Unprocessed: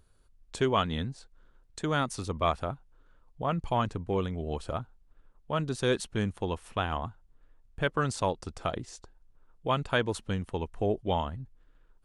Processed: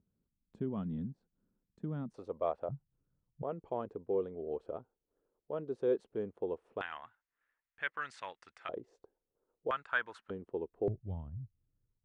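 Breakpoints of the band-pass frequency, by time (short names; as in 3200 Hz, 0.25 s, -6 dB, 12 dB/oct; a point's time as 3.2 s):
band-pass, Q 2.9
200 Hz
from 2.14 s 530 Hz
from 2.69 s 140 Hz
from 3.43 s 440 Hz
from 6.81 s 1900 Hz
from 8.69 s 450 Hz
from 9.71 s 1500 Hz
from 10.3 s 400 Hz
from 10.88 s 110 Hz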